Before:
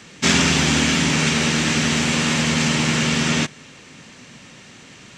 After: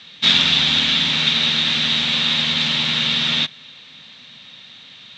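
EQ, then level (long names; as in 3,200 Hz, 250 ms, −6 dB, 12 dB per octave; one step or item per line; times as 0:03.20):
low-pass with resonance 3,700 Hz, resonance Q 9.9
low-shelf EQ 86 Hz −12 dB
parametric band 360 Hz −9.5 dB 0.78 octaves
−5.0 dB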